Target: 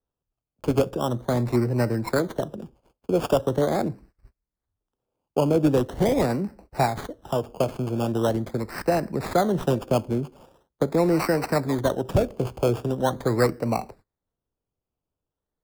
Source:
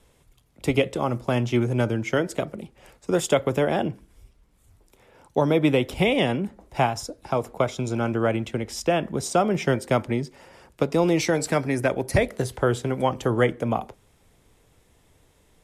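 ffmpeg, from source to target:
-filter_complex "[0:a]acrossover=split=210|930[a][b][c];[c]acrusher=samples=18:mix=1:aa=0.000001:lfo=1:lforange=10.8:lforate=0.42[d];[a][b][d]amix=inputs=3:normalize=0,agate=range=-27dB:threshold=-48dB:ratio=16:detection=peak"

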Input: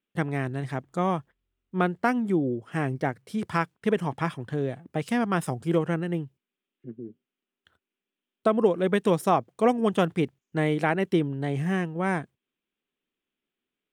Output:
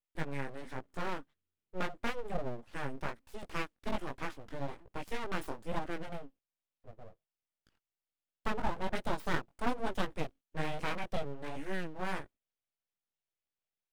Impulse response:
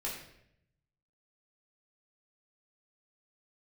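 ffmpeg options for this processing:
-af "flanger=delay=15.5:depth=6.4:speed=1.2,aeval=exprs='abs(val(0))':c=same,volume=-5.5dB"

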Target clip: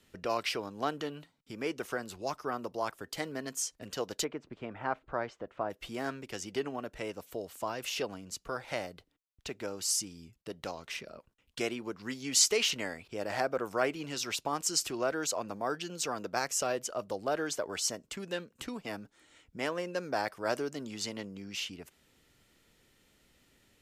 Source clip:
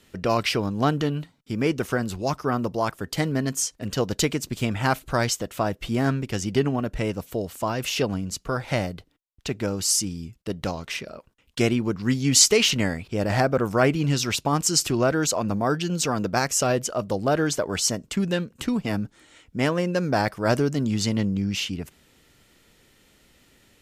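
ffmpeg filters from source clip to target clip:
-filter_complex "[0:a]asplit=3[a][b][c];[a]afade=t=out:st=4.23:d=0.02[d];[b]lowpass=1.5k,afade=t=in:st=4.23:d=0.02,afade=t=out:st=5.69:d=0.02[e];[c]afade=t=in:st=5.69:d=0.02[f];[d][e][f]amix=inputs=3:normalize=0,acrossover=split=310[g][h];[g]acompressor=threshold=-42dB:ratio=6[i];[i][h]amix=inputs=2:normalize=0,volume=-8.5dB"

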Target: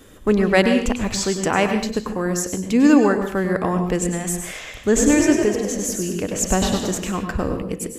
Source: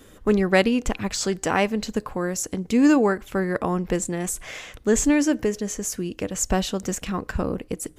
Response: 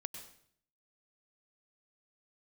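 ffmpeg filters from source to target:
-filter_complex "[0:a]asettb=1/sr,asplit=3[a][b][c];[a]atrim=end=4.574[d];[b]atrim=start=4.57:end=6.98,asetpts=PTS-STARTPTS,afade=t=in:d=0.004:c=qsin,afade=t=out:st=2.406:d=0.004:c=qsin,asplit=7[e][f][g][h][i][j][k];[f]adelay=98,afreqshift=44,volume=-7dB[l];[g]adelay=196,afreqshift=88,volume=-13.2dB[m];[h]adelay=294,afreqshift=132,volume=-19.4dB[n];[i]adelay=392,afreqshift=176,volume=-25.6dB[o];[j]adelay=490,afreqshift=220,volume=-31.8dB[p];[k]adelay=588,afreqshift=264,volume=-38dB[q];[e][l][m][n][o][p][q]amix=inputs=7:normalize=0,atrim=end_sample=106281[r];[c]atrim=start=6.976[s];[d][r]acrossfade=d=0.004:c1=hsin:c2=qsin[t];[t][s]acrossfade=d=0.004:c1=qsin:c2=hsin[u];[1:a]atrim=start_sample=2205,afade=t=out:st=0.32:d=0.01,atrim=end_sample=14553[v];[u][v]afir=irnorm=-1:irlink=0,volume=5.5dB"

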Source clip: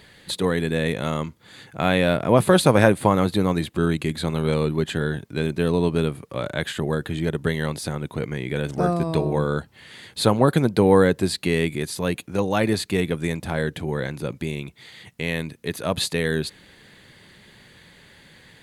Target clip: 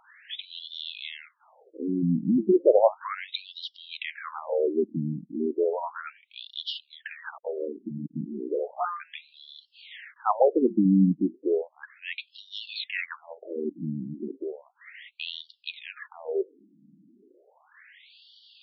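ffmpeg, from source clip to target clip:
-filter_complex "[0:a]flanger=delay=0.6:depth=5.9:regen=88:speed=0.6:shape=triangular,asettb=1/sr,asplit=3[a][b][c];[a]atrim=end=7.244[d];[b]atrim=start=7.24:end=8.7,asetpts=PTS-STARTPTS,afade=t=in:d=0.004:c=qsin,afade=t=out:st=1.456:d=0.004:c=qsin,aeval=exprs='val(0)*gte(abs(val(0)),0.0158)':c=same[e];[c]atrim=start=8.696[f];[d][e]acrossfade=d=0.004:c1=hsin:c2=qsin[g];[g][f]acrossfade=d=0.004:c1=qsin:c2=hsin,afftfilt=real='re*between(b*sr/1024,220*pow(4100/220,0.5+0.5*sin(2*PI*0.34*pts/sr))/1.41,220*pow(4100/220,0.5+0.5*sin(2*PI*0.34*pts/sr))*1.41)':imag='im*between(b*sr/1024,220*pow(4100/220,0.5+0.5*sin(2*PI*0.34*pts/sr))/1.41,220*pow(4100/220,0.5+0.5*sin(2*PI*0.34*pts/sr))*1.41)':win_size=1024:overlap=0.75,volume=6dB"

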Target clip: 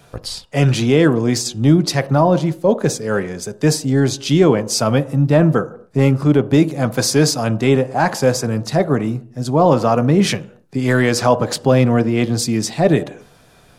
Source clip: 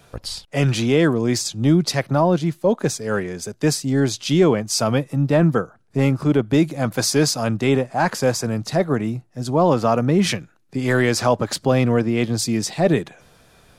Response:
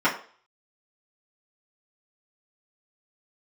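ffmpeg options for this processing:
-filter_complex "[0:a]asplit=2[a][b];[1:a]atrim=start_sample=2205,afade=t=out:st=0.19:d=0.01,atrim=end_sample=8820,asetrate=22932,aresample=44100[c];[b][c]afir=irnorm=-1:irlink=0,volume=-30.5dB[d];[a][d]amix=inputs=2:normalize=0,volume=2dB"

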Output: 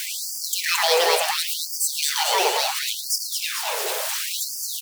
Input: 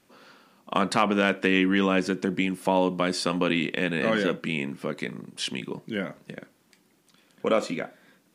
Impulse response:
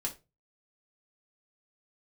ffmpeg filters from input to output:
-filter_complex "[0:a]aeval=exprs='val(0)+0.5*0.075*sgn(val(0))':c=same,asplit=2[a][b];[b]aecho=0:1:191:0.211[c];[a][c]amix=inputs=2:normalize=0,asetrate=76440,aresample=44100,highpass=f=180:w=0.5412,highpass=f=180:w=1.3066,bass=f=250:g=13,treble=f=4k:g=3,acrusher=bits=3:mode=log:mix=0:aa=0.000001,asplit=2[d][e];[e]asplit=8[f][g][h][i][j][k][l][m];[f]adelay=221,afreqshift=-67,volume=-5dB[n];[g]adelay=442,afreqshift=-134,volume=-9.6dB[o];[h]adelay=663,afreqshift=-201,volume=-14.2dB[p];[i]adelay=884,afreqshift=-268,volume=-18.7dB[q];[j]adelay=1105,afreqshift=-335,volume=-23.3dB[r];[k]adelay=1326,afreqshift=-402,volume=-27.9dB[s];[l]adelay=1547,afreqshift=-469,volume=-32.5dB[t];[m]adelay=1768,afreqshift=-536,volume=-37.1dB[u];[n][o][p][q][r][s][t][u]amix=inputs=8:normalize=0[v];[d][v]amix=inputs=2:normalize=0,afftfilt=real='re*gte(b*sr/1024,370*pow(4600/370,0.5+0.5*sin(2*PI*0.71*pts/sr)))':imag='im*gte(b*sr/1024,370*pow(4600/370,0.5+0.5*sin(2*PI*0.71*pts/sr)))':win_size=1024:overlap=0.75"

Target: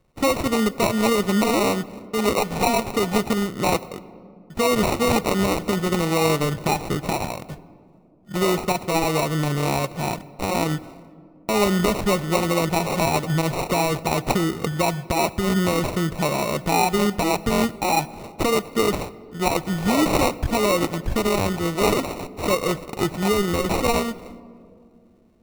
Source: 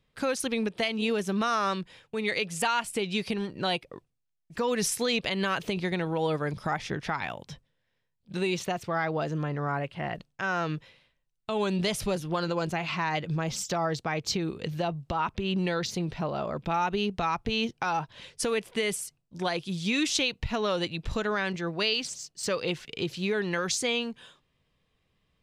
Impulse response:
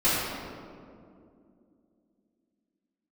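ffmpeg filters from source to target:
-filter_complex "[0:a]bandreject=f=1.5k:w=5.3,acrusher=samples=27:mix=1:aa=0.000001,asplit=2[a][b];[1:a]atrim=start_sample=2205,highshelf=f=11k:g=10.5[c];[b][c]afir=irnorm=-1:irlink=0,volume=-32dB[d];[a][d]amix=inputs=2:normalize=0,volume=8dB"

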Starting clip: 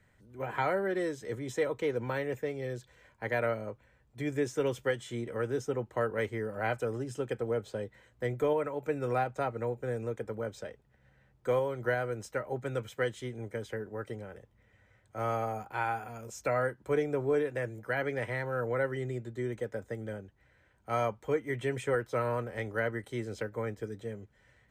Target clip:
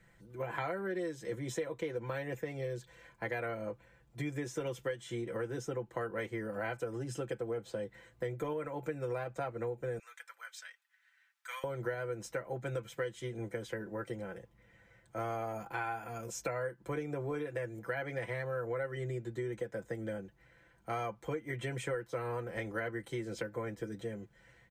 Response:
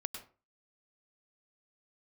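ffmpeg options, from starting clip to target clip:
-filter_complex "[0:a]asettb=1/sr,asplit=3[a][b][c];[a]atrim=end=9.994[d];[b]atrim=start=9.99:end=11.64,asetpts=PTS-STARTPTS,afade=t=in:d=0.004:c=qsin,afade=t=out:st=1.646:d=0.004:c=qsin,highpass=f=1.4k:w=0.5412,highpass=f=1.4k:w=1.3066[e];[c]atrim=start=11.636[f];[d][e]acrossfade=d=0.004:c1=hsin:c2=qsin[g];[g][f]acrossfade=d=0.004:c1=qsin:c2=hsin,aecho=1:1:5.9:0.71,acompressor=threshold=-36dB:ratio=4,volume=1dB"

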